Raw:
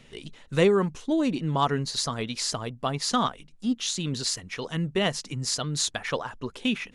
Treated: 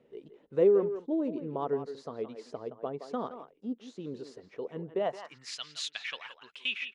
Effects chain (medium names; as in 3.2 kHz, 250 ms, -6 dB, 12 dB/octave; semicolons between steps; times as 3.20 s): speakerphone echo 170 ms, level -9 dB; band-pass sweep 440 Hz -> 2.7 kHz, 4.92–5.57 s